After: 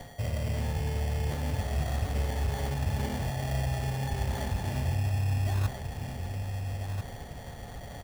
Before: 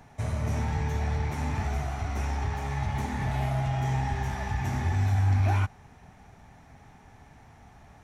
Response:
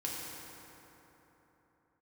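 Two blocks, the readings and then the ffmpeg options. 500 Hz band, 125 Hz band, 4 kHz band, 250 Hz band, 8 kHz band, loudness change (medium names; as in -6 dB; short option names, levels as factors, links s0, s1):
+1.0 dB, -2.0 dB, +3.0 dB, -2.0 dB, +2.0 dB, -3.0 dB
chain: -filter_complex "[0:a]equalizer=f=530:w=3.1:g=15,areverse,acompressor=threshold=0.0158:ratio=12,areverse,lowshelf=f=240:g=7.5,asplit=2[s0][s1];[s1]adelay=1341,volume=0.501,highshelf=f=4000:g=-30.2[s2];[s0][s2]amix=inputs=2:normalize=0,aeval=exprs='val(0)+0.00224*sin(2*PI*3300*n/s)':c=same,acrusher=samples=17:mix=1:aa=0.000001,bandreject=f=63.99:t=h:w=4,bandreject=f=127.98:t=h:w=4,bandreject=f=191.97:t=h:w=4,bandreject=f=255.96:t=h:w=4,bandreject=f=319.95:t=h:w=4,bandreject=f=383.94:t=h:w=4,bandreject=f=447.93:t=h:w=4,bandreject=f=511.92:t=h:w=4,bandreject=f=575.91:t=h:w=4,bandreject=f=639.9:t=h:w=4,bandreject=f=703.89:t=h:w=4,bandreject=f=767.88:t=h:w=4,bandreject=f=831.87:t=h:w=4,bandreject=f=895.86:t=h:w=4,bandreject=f=959.85:t=h:w=4,bandreject=f=1023.84:t=h:w=4,bandreject=f=1087.83:t=h:w=4,bandreject=f=1151.82:t=h:w=4,bandreject=f=1215.81:t=h:w=4,bandreject=f=1279.8:t=h:w=4,bandreject=f=1343.79:t=h:w=4,bandreject=f=1407.78:t=h:w=4,bandreject=f=1471.77:t=h:w=4,bandreject=f=1535.76:t=h:w=4,bandreject=f=1599.75:t=h:w=4,bandreject=f=1663.74:t=h:w=4,bandreject=f=1727.73:t=h:w=4,bandreject=f=1791.72:t=h:w=4,bandreject=f=1855.71:t=h:w=4,bandreject=f=1919.7:t=h:w=4,bandreject=f=1983.69:t=h:w=4,bandreject=f=2047.68:t=h:w=4,volume=1.58"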